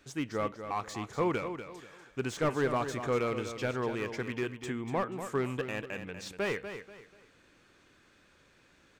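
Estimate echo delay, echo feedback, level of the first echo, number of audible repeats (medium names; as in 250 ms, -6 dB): 242 ms, 31%, -9.5 dB, 3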